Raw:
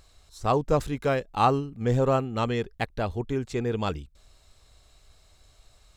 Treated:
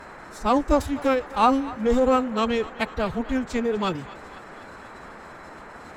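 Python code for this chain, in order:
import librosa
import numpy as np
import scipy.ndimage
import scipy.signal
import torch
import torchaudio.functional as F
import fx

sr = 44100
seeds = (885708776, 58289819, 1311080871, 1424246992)

y = fx.pitch_keep_formants(x, sr, semitones=11.5)
y = fx.echo_thinned(y, sr, ms=247, feedback_pct=68, hz=460.0, wet_db=-17.5)
y = fx.dmg_noise_band(y, sr, seeds[0], low_hz=140.0, high_hz=1700.0, level_db=-46.0)
y = F.gain(torch.from_numpy(y), 3.5).numpy()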